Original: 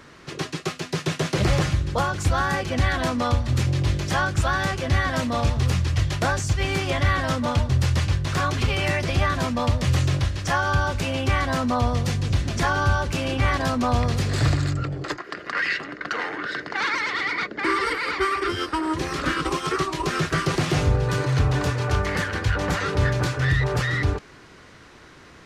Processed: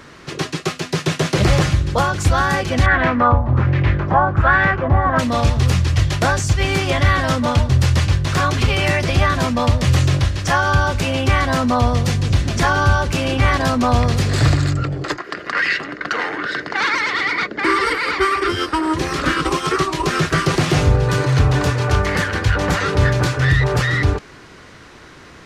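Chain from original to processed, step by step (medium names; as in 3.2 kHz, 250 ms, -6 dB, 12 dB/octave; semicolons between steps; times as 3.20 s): 2.86–5.19 s: LFO low-pass sine 1.3 Hz 880–2100 Hz; trim +6 dB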